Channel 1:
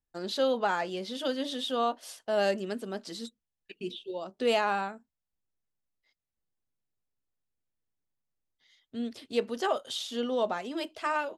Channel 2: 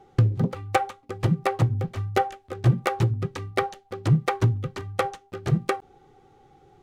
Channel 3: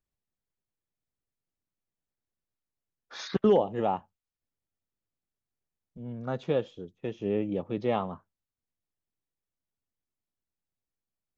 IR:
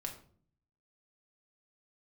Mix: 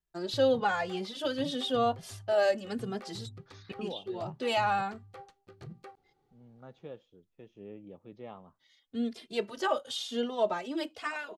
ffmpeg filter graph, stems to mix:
-filter_complex "[0:a]asplit=2[link_01][link_02];[link_02]adelay=2.5,afreqshift=-0.97[link_03];[link_01][link_03]amix=inputs=2:normalize=1,volume=2.5dB[link_04];[1:a]equalizer=frequency=4400:width=5.3:gain=7,alimiter=limit=-19.5dB:level=0:latency=1:release=31,adelay=150,volume=-18.5dB[link_05];[2:a]adelay=350,volume=-17.5dB[link_06];[link_04][link_05][link_06]amix=inputs=3:normalize=0,highshelf=frequency=10000:gain=-5"

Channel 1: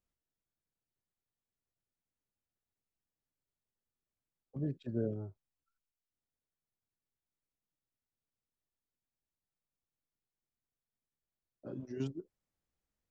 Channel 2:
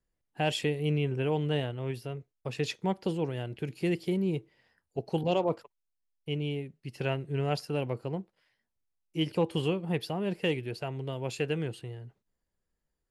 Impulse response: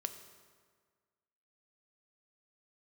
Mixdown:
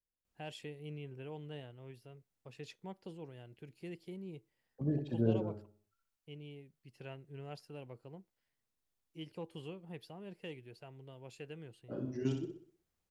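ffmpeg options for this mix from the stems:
-filter_complex "[0:a]adelay=250,volume=2.5dB,asplit=2[link_01][link_02];[link_02]volume=-6dB[link_03];[1:a]volume=-17dB[link_04];[link_03]aecho=0:1:62|124|186|248|310|372:1|0.42|0.176|0.0741|0.0311|0.0131[link_05];[link_01][link_04][link_05]amix=inputs=3:normalize=0"

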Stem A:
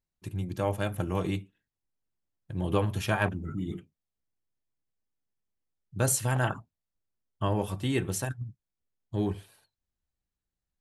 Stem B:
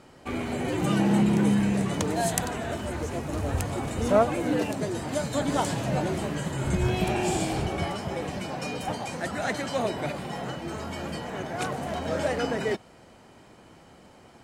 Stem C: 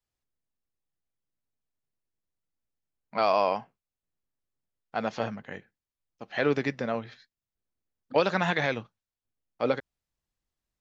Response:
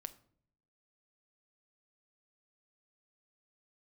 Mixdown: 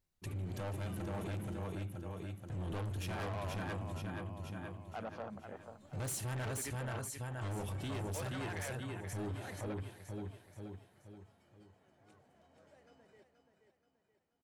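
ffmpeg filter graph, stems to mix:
-filter_complex "[0:a]equalizer=frequency=93:width_type=o:width=0.21:gain=6.5,volume=3dB,asplit=3[link_01][link_02][link_03];[link_02]volume=-8dB[link_04];[1:a]volume=-18.5dB,asplit=2[link_05][link_06];[link_06]volume=-18.5dB[link_07];[2:a]highpass=frequency=390:poles=1,afwtdn=0.0141,tremolo=f=0.57:d=0.46,volume=-0.5dB,asplit=2[link_08][link_09];[link_09]volume=-19.5dB[link_10];[link_03]apad=whole_len=636418[link_11];[link_05][link_11]sidechaingate=range=-33dB:threshold=-55dB:ratio=16:detection=peak[link_12];[link_01][link_08]amix=inputs=2:normalize=0,asoftclip=type=tanh:threshold=-23dB,alimiter=level_in=3.5dB:limit=-24dB:level=0:latency=1:release=404,volume=-3.5dB,volume=0dB[link_13];[link_04][link_07][link_10]amix=inputs=3:normalize=0,aecho=0:1:478|956|1434|1912|2390|2868:1|0.43|0.185|0.0795|0.0342|0.0147[link_14];[link_12][link_13][link_14]amix=inputs=3:normalize=0,asoftclip=type=tanh:threshold=-30.5dB,alimiter=level_in=12dB:limit=-24dB:level=0:latency=1:release=54,volume=-12dB"

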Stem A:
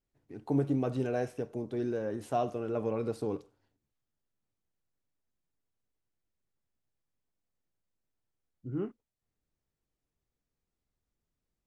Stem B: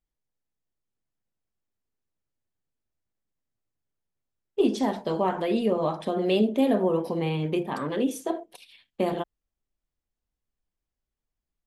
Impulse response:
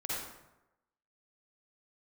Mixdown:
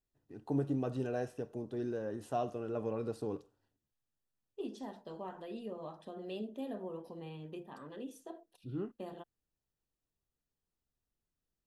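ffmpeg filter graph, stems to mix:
-filter_complex "[0:a]volume=-4.5dB[link_01];[1:a]volume=-19dB[link_02];[link_01][link_02]amix=inputs=2:normalize=0,asuperstop=centerf=2200:order=4:qfactor=6.5"

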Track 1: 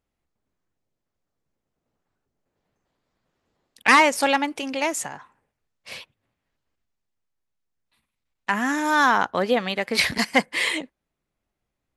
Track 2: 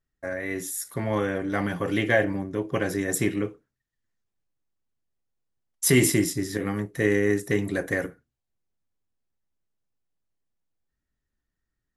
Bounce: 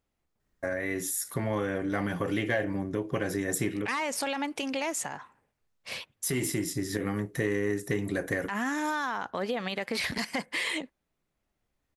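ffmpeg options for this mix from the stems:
ffmpeg -i stem1.wav -i stem2.wav -filter_complex "[0:a]alimiter=limit=-16.5dB:level=0:latency=1:release=24,volume=0dB,asplit=2[link_01][link_02];[1:a]acontrast=82,adelay=400,volume=-3dB[link_03];[link_02]apad=whole_len=545102[link_04];[link_03][link_04]sidechaincompress=threshold=-50dB:ratio=3:attack=16:release=872[link_05];[link_01][link_05]amix=inputs=2:normalize=0,acompressor=threshold=-30dB:ratio=2.5" out.wav

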